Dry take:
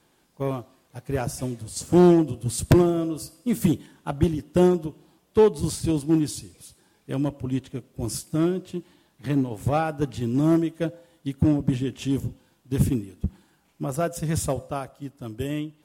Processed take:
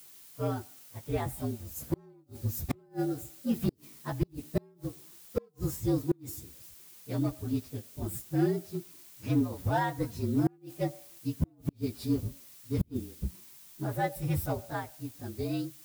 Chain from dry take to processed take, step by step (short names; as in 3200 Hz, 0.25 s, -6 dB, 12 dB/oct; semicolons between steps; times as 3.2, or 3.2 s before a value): inharmonic rescaling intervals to 115%; added noise blue -50 dBFS; flipped gate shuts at -13 dBFS, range -36 dB; gain -3 dB